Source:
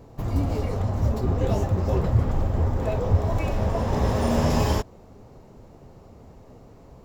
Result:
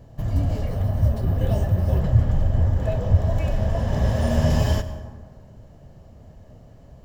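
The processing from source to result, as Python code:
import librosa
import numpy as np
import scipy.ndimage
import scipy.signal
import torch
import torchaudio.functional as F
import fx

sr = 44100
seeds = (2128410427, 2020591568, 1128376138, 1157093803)

y = fx.curve_eq(x, sr, hz=(150.0, 430.0, 5400.0), db=(0, -13, -5))
y = fx.rev_plate(y, sr, seeds[0], rt60_s=1.6, hf_ratio=0.45, predelay_ms=85, drr_db=12.0)
y = fx.resample_bad(y, sr, factor=3, down='filtered', up='hold', at=(0.67, 2.0))
y = fx.small_body(y, sr, hz=(610.0, 1700.0, 3000.0), ring_ms=20, db=11)
y = y * 10.0 ** (3.0 / 20.0)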